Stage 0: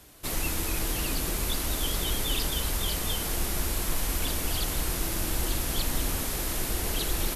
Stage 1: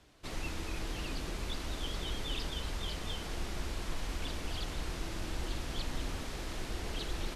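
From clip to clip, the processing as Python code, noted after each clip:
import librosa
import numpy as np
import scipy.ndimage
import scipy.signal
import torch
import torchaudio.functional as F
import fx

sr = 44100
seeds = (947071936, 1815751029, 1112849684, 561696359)

y = scipy.signal.sosfilt(scipy.signal.butter(2, 5100.0, 'lowpass', fs=sr, output='sos'), x)
y = y * librosa.db_to_amplitude(-7.5)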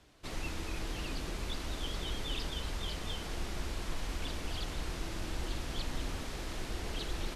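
y = x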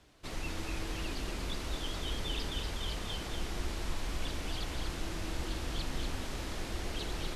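y = x + 10.0 ** (-5.5 / 20.0) * np.pad(x, (int(240 * sr / 1000.0), 0))[:len(x)]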